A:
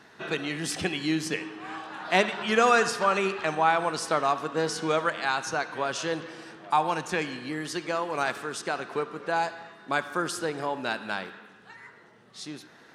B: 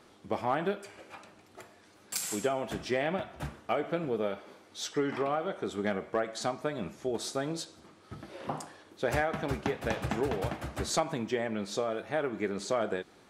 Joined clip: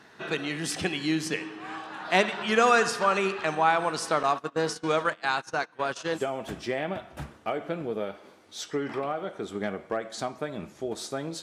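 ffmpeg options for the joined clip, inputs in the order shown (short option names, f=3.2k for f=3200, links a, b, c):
-filter_complex "[0:a]asettb=1/sr,asplit=3[a][b][c];[a]atrim=end=4.234[d];[b]atrim=start=4.23:end=6.22,asetpts=PTS-STARTPTS,afade=t=in:d=0.004:c=qsin,afade=t=out:st=1.986:d=0.004:c=qsin,agate=range=-20dB:threshold=-33dB:ratio=16:release=100:detection=peak[e];[c]atrim=start=6.216[f];[d][e]acrossfade=d=0.004:c1=hsin:c2=qsin[g];[g][f]acrossfade=d=0.004:c1=qsin:c2=hsin,apad=whole_dur=11.42,atrim=end=11.42,atrim=end=6.22,asetpts=PTS-STARTPTS[h];[1:a]atrim=start=2.37:end=7.65,asetpts=PTS-STARTPTS[i];[h][i]acrossfade=d=0.08:c1=tri:c2=tri"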